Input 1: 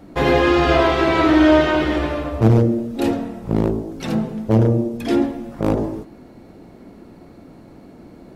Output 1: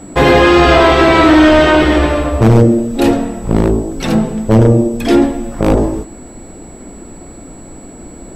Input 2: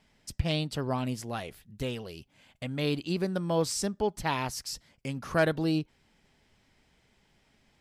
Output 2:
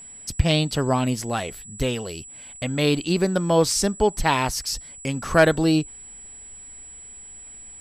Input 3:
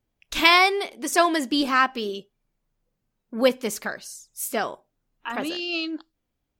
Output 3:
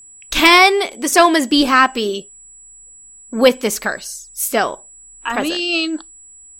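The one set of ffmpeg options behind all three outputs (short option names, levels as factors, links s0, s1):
-af "aeval=exprs='val(0)+0.00355*sin(2*PI*7800*n/s)':c=same,asubboost=boost=3.5:cutoff=61,apsyclip=3.76,volume=0.794"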